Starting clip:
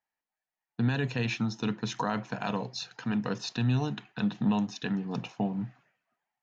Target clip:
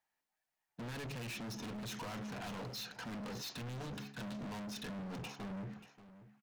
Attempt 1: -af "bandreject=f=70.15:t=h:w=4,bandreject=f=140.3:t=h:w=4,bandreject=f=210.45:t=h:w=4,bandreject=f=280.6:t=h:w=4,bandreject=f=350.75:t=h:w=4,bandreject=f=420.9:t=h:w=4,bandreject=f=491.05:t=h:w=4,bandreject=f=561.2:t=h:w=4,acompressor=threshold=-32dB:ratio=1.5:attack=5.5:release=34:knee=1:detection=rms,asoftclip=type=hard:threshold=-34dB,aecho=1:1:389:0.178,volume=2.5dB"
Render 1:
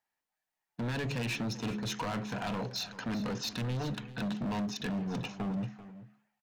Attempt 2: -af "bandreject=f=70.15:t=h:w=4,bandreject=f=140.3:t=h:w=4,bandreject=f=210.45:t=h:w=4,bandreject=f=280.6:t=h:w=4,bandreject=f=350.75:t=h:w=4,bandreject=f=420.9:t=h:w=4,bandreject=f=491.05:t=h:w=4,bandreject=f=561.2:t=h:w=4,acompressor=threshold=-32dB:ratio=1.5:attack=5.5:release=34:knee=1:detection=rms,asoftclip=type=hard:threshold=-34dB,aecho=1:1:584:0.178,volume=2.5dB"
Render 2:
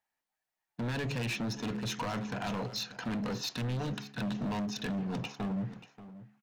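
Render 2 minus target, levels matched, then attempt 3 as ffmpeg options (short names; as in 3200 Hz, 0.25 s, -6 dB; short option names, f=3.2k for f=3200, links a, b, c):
hard clip: distortion -5 dB
-af "bandreject=f=70.15:t=h:w=4,bandreject=f=140.3:t=h:w=4,bandreject=f=210.45:t=h:w=4,bandreject=f=280.6:t=h:w=4,bandreject=f=350.75:t=h:w=4,bandreject=f=420.9:t=h:w=4,bandreject=f=491.05:t=h:w=4,bandreject=f=561.2:t=h:w=4,acompressor=threshold=-32dB:ratio=1.5:attack=5.5:release=34:knee=1:detection=rms,asoftclip=type=hard:threshold=-45dB,aecho=1:1:584:0.178,volume=2.5dB"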